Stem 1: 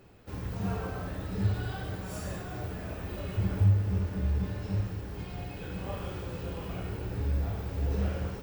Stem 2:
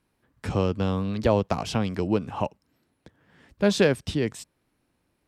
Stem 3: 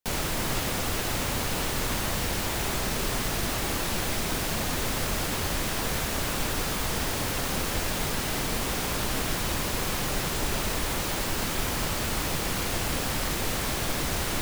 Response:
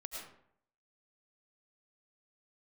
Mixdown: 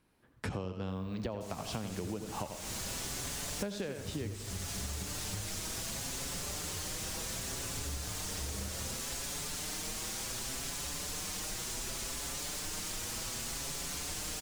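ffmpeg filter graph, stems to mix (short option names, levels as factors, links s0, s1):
-filter_complex "[0:a]aeval=exprs='0.188*(cos(1*acos(clip(val(0)/0.188,-1,1)))-cos(1*PI/2))+0.0376*(cos(3*acos(clip(val(0)/0.188,-1,1)))-cos(3*PI/2))':c=same,adelay=600,volume=0.841[s0];[1:a]volume=0.891,asplit=3[s1][s2][s3];[s2]volume=0.398[s4];[s3]volume=0.447[s5];[2:a]equalizer=f=7100:t=o:w=1.7:g=12,asplit=2[s6][s7];[s7]adelay=5.7,afreqshift=0.67[s8];[s6][s8]amix=inputs=2:normalize=1,adelay=1350,volume=0.316[s9];[3:a]atrim=start_sample=2205[s10];[s4][s10]afir=irnorm=-1:irlink=0[s11];[s5]aecho=0:1:85:1[s12];[s0][s1][s9][s11][s12]amix=inputs=5:normalize=0,acompressor=threshold=0.02:ratio=20"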